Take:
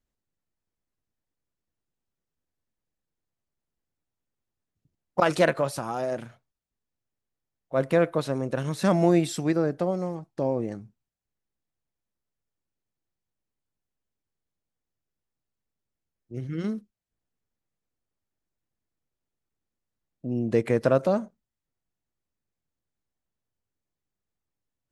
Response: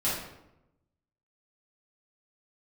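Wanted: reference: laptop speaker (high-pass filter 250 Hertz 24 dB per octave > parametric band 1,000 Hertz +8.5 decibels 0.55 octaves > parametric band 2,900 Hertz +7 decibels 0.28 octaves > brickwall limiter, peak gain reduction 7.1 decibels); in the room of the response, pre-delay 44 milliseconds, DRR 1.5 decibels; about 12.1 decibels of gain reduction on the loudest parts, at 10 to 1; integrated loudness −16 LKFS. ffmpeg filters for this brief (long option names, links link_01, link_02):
-filter_complex "[0:a]acompressor=threshold=-28dB:ratio=10,asplit=2[link_01][link_02];[1:a]atrim=start_sample=2205,adelay=44[link_03];[link_02][link_03]afir=irnorm=-1:irlink=0,volume=-10.5dB[link_04];[link_01][link_04]amix=inputs=2:normalize=0,highpass=frequency=250:width=0.5412,highpass=frequency=250:width=1.3066,equalizer=frequency=1000:width_type=o:width=0.55:gain=8.5,equalizer=frequency=2900:width_type=o:width=0.28:gain=7,volume=17.5dB,alimiter=limit=-4.5dB:level=0:latency=1"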